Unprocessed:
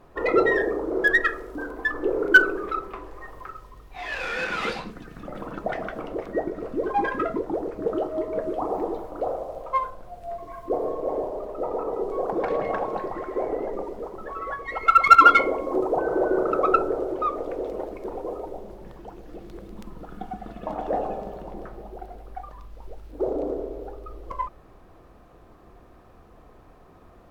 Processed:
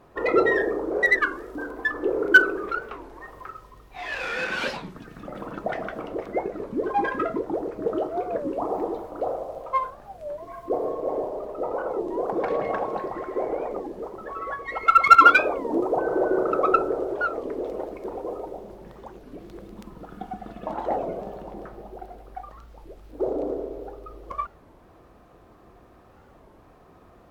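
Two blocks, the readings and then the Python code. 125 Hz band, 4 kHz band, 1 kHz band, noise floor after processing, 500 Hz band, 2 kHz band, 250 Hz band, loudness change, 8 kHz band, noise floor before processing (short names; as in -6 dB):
-1.5 dB, 0.0 dB, 0.0 dB, -53 dBFS, 0.0 dB, +0.5 dB, 0.0 dB, 0.0 dB, n/a, -51 dBFS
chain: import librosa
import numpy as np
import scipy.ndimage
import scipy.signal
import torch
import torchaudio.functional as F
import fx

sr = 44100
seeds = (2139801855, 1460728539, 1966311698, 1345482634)

y = fx.highpass(x, sr, hz=60.0, slope=6)
y = fx.record_warp(y, sr, rpm=33.33, depth_cents=250.0)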